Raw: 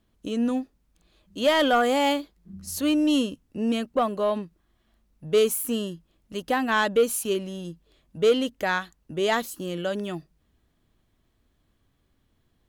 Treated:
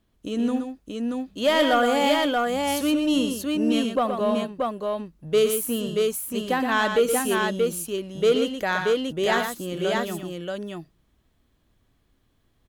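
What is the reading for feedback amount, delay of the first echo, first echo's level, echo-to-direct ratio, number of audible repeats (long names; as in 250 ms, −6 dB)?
repeats not evenly spaced, 76 ms, −16.5 dB, −1.5 dB, 3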